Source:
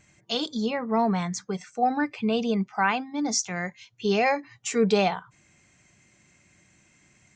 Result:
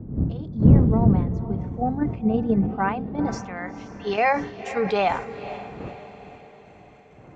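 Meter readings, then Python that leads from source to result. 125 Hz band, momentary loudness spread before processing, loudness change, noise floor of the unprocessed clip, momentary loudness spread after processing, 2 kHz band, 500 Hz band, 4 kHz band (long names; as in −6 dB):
+14.5 dB, 9 LU, +3.5 dB, −62 dBFS, 18 LU, −1.0 dB, +0.5 dB, −9.0 dB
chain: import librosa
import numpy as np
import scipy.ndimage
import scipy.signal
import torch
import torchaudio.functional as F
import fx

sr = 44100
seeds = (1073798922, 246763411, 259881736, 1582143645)

p1 = fx.fade_in_head(x, sr, length_s=0.81)
p2 = fx.dmg_wind(p1, sr, seeds[0], corner_hz=130.0, level_db=-23.0)
p3 = fx.high_shelf(p2, sr, hz=4400.0, db=-6.5)
p4 = fx.level_steps(p3, sr, step_db=23)
p5 = p3 + (p4 * 10.0 ** (2.5 / 20.0))
p6 = fx.filter_sweep_bandpass(p5, sr, from_hz=200.0, to_hz=1200.0, start_s=2.37, end_s=3.77, q=0.7)
p7 = p6 + fx.echo_diffused(p6, sr, ms=489, feedback_pct=50, wet_db=-12.5, dry=0)
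p8 = fx.sustainer(p7, sr, db_per_s=100.0)
y = p8 * 10.0 ** (-1.0 / 20.0)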